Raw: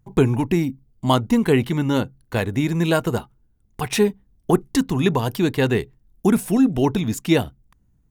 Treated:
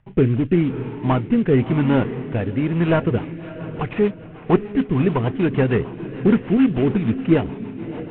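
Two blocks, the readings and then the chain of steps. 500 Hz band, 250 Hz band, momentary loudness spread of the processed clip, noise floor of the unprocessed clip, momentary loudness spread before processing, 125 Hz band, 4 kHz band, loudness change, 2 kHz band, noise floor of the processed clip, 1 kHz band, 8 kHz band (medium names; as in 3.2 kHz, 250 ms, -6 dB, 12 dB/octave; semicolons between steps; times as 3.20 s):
+1.0 dB, +1.5 dB, 12 LU, -62 dBFS, 8 LU, +2.0 dB, -9.0 dB, +1.0 dB, -1.5 dB, -38 dBFS, -1.5 dB, under -40 dB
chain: CVSD coder 16 kbps; echo that smears into a reverb 617 ms, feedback 42%, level -12 dB; rotary cabinet horn 0.9 Hz, later 6.7 Hz, at 2.72 s; trim +3.5 dB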